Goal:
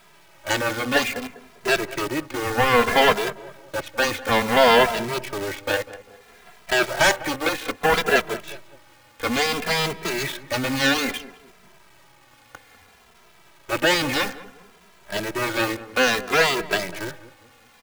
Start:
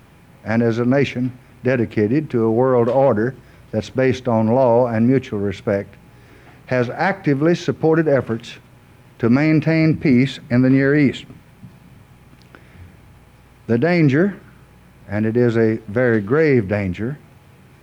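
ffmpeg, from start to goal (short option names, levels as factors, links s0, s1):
-filter_complex "[0:a]acrossover=split=480 3400:gain=0.0891 1 0.0891[s0][s1][s2];[s0][s1][s2]amix=inputs=3:normalize=0,aeval=exprs='0.398*(cos(1*acos(clip(val(0)/0.398,-1,1)))-cos(1*PI/2))+0.126*(cos(7*acos(clip(val(0)/0.398,-1,1)))-cos(7*PI/2))':c=same,acrusher=bits=6:dc=4:mix=0:aa=0.000001,asplit=2[s3][s4];[s4]adelay=199,lowpass=f=1200:p=1,volume=0.178,asplit=2[s5][s6];[s6]adelay=199,lowpass=f=1200:p=1,volume=0.37,asplit=2[s7][s8];[s8]adelay=199,lowpass=f=1200:p=1,volume=0.37[s9];[s5][s7][s9]amix=inputs=3:normalize=0[s10];[s3][s10]amix=inputs=2:normalize=0,asplit=2[s11][s12];[s12]adelay=2.6,afreqshift=-0.6[s13];[s11][s13]amix=inputs=2:normalize=1,volume=1.88"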